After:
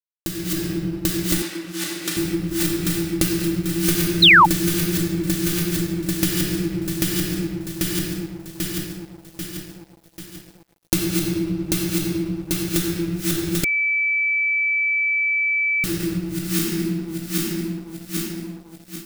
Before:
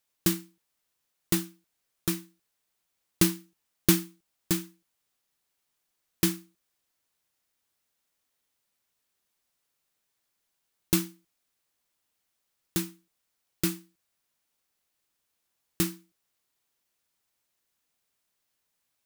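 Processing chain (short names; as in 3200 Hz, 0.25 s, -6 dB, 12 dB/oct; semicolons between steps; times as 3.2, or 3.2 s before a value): regenerating reverse delay 0.395 s, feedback 74%, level -3 dB; bell 1000 Hz -13.5 dB 0.26 oct; reverb RT60 1.1 s, pre-delay 3 ms, DRR -4.5 dB; compressor 5:1, threshold -31 dBFS, peak gain reduction 17 dB; 1.42–2.17 weighting filter A; 4.22–4.46 painted sound fall 800–4300 Hz -22 dBFS; crossover distortion -56 dBFS; AGC gain up to 9 dB; 13.64–15.84 bleep 2310 Hz -21 dBFS; gain +3.5 dB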